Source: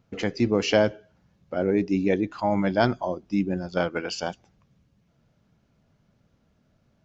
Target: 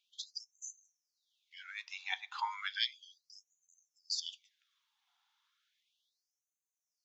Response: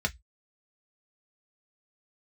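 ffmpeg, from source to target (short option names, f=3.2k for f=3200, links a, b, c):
-filter_complex "[0:a]equalizer=f=3.5k:w=3.8:g=11.5,asplit=2[a][b];[1:a]atrim=start_sample=2205,asetrate=23373,aresample=44100[c];[b][c]afir=irnorm=-1:irlink=0,volume=-24dB[d];[a][d]amix=inputs=2:normalize=0,afftfilt=real='re*gte(b*sr/1024,720*pow(6100/720,0.5+0.5*sin(2*PI*0.34*pts/sr)))':imag='im*gte(b*sr/1024,720*pow(6100/720,0.5+0.5*sin(2*PI*0.34*pts/sr)))':win_size=1024:overlap=0.75,volume=-3dB"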